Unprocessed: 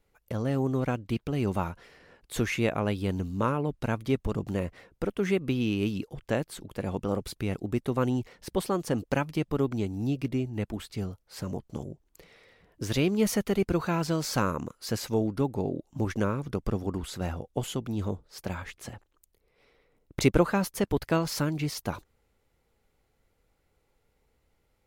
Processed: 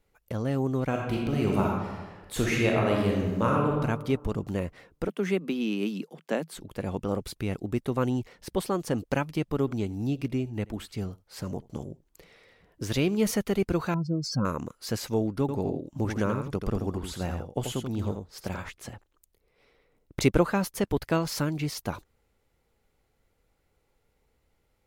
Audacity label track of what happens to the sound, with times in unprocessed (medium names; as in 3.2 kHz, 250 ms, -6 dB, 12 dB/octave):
0.880000	3.800000	reverb throw, RT60 1.3 s, DRR -1.5 dB
5.080000	6.550000	Chebyshev high-pass 160 Hz, order 6
9.570000	13.310000	delay 82 ms -23.5 dB
13.940000	14.450000	spectral contrast enhancement exponent 2.6
15.400000	18.690000	delay 85 ms -6.5 dB